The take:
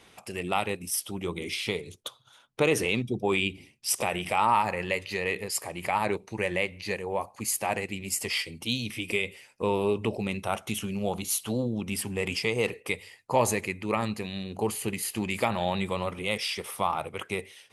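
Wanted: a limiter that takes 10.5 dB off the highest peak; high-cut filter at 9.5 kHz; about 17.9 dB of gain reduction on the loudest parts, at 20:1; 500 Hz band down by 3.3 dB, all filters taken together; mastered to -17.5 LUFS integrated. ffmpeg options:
-af "lowpass=9500,equalizer=f=500:t=o:g=-4,acompressor=threshold=0.0141:ratio=20,volume=21.1,alimiter=limit=0.562:level=0:latency=1"

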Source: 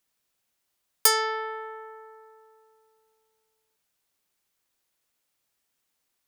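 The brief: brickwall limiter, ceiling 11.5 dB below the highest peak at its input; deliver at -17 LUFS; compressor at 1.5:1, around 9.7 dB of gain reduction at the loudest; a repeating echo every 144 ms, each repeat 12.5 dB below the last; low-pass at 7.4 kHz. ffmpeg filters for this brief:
-af "lowpass=7400,acompressor=threshold=0.00501:ratio=1.5,alimiter=level_in=1.78:limit=0.0631:level=0:latency=1,volume=0.562,aecho=1:1:144|288|432:0.237|0.0569|0.0137,volume=17.8"

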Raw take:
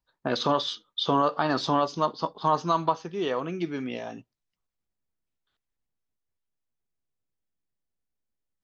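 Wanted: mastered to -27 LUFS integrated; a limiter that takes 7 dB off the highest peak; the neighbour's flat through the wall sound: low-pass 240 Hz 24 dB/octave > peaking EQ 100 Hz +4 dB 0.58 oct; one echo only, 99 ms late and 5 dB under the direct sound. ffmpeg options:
-af "alimiter=limit=0.133:level=0:latency=1,lowpass=f=240:w=0.5412,lowpass=f=240:w=1.3066,equalizer=f=100:t=o:w=0.58:g=4,aecho=1:1:99:0.562,volume=4.22"

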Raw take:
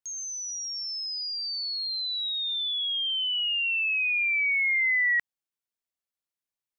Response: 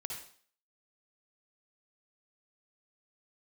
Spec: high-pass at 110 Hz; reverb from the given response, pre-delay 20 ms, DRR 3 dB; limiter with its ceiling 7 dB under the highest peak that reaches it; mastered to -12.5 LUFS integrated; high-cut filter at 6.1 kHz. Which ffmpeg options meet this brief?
-filter_complex "[0:a]highpass=110,lowpass=6100,alimiter=level_in=1.5:limit=0.0631:level=0:latency=1,volume=0.668,asplit=2[s0][s1];[1:a]atrim=start_sample=2205,adelay=20[s2];[s1][s2]afir=irnorm=-1:irlink=0,volume=0.75[s3];[s0][s3]amix=inputs=2:normalize=0,volume=5.31"

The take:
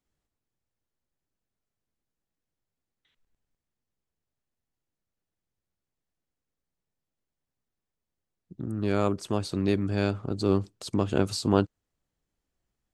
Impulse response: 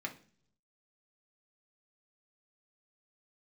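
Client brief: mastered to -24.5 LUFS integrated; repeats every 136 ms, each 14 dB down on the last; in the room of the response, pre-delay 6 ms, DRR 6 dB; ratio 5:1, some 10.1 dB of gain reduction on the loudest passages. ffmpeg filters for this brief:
-filter_complex "[0:a]acompressor=threshold=0.0398:ratio=5,aecho=1:1:136|272:0.2|0.0399,asplit=2[s0][s1];[1:a]atrim=start_sample=2205,adelay=6[s2];[s1][s2]afir=irnorm=-1:irlink=0,volume=0.447[s3];[s0][s3]amix=inputs=2:normalize=0,volume=2.82"

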